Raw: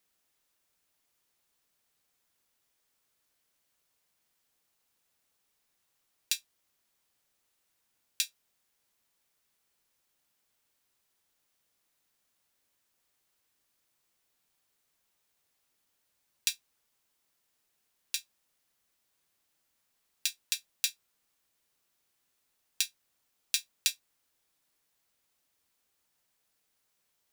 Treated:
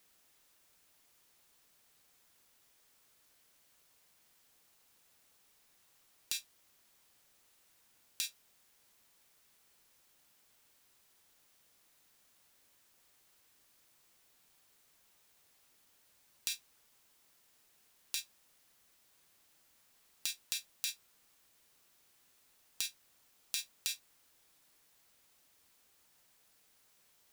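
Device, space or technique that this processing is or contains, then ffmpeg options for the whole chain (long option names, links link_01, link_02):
de-esser from a sidechain: -filter_complex "[0:a]asplit=2[link_01][link_02];[link_02]highpass=frequency=5100:width=0.5412,highpass=frequency=5100:width=1.3066,apad=whole_len=1204980[link_03];[link_01][link_03]sidechaincompress=threshold=-41dB:ratio=6:attack=2:release=29,volume=8dB"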